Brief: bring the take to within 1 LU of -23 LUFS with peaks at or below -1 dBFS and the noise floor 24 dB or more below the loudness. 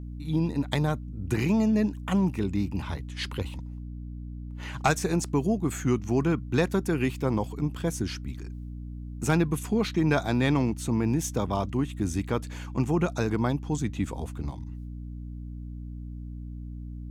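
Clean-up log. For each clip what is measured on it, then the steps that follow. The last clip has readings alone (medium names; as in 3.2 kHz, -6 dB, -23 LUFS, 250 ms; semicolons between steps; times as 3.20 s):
hum 60 Hz; highest harmonic 300 Hz; hum level -35 dBFS; loudness -28.0 LUFS; peak level -12.5 dBFS; loudness target -23.0 LUFS
-> hum notches 60/120/180/240/300 Hz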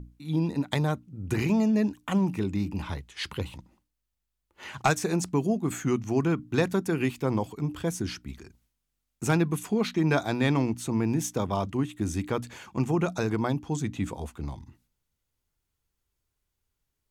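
hum not found; loudness -28.5 LUFS; peak level -12.0 dBFS; loudness target -23.0 LUFS
-> trim +5.5 dB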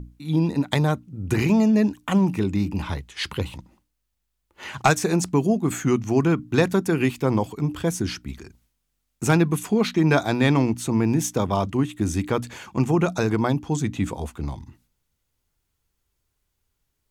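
loudness -23.0 LUFS; peak level -6.5 dBFS; noise floor -76 dBFS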